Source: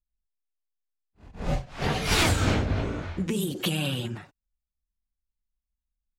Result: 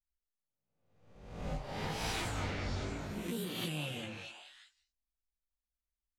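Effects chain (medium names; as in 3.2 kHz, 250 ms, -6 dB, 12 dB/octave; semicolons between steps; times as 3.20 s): reverse spectral sustain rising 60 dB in 0.88 s; compression, threshold -22 dBFS, peak gain reduction 7 dB; chorus 0.86 Hz, delay 17.5 ms, depth 3 ms; on a send: repeats whose band climbs or falls 203 ms, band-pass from 760 Hz, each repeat 1.4 oct, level -0.5 dB; on the sum: vibrato 0.67 Hz 95 cents; trim -9 dB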